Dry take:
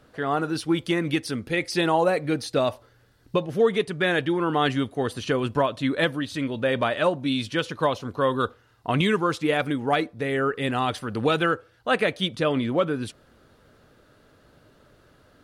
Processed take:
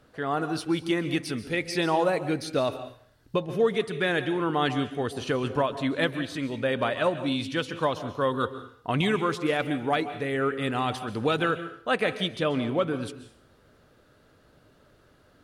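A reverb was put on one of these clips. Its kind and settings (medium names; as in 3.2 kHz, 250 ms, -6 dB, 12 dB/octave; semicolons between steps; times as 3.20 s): plate-style reverb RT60 0.55 s, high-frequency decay 1×, pre-delay 120 ms, DRR 11.5 dB; trim -3 dB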